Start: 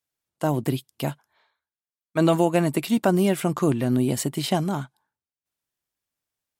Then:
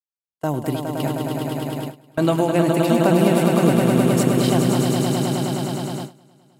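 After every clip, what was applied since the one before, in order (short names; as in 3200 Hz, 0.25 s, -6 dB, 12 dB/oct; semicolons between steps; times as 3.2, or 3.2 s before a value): swelling echo 0.104 s, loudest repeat 5, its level -6 dB; gate with hold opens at -17 dBFS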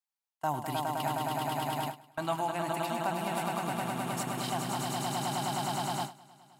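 reverse; compressor 6:1, threshold -25 dBFS, peak gain reduction 13.5 dB; reverse; resonant low shelf 630 Hz -8 dB, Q 3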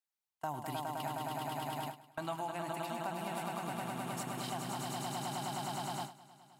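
compressor 2:1, threshold -36 dBFS, peak gain reduction 6 dB; gain -2.5 dB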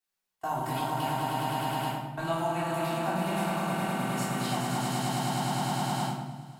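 shoebox room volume 440 m³, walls mixed, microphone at 3.4 m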